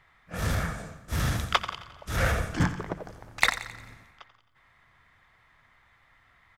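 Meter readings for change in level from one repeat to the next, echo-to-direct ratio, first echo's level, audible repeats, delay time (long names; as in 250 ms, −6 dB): −6.0 dB, −12.0 dB, −13.0 dB, 4, 88 ms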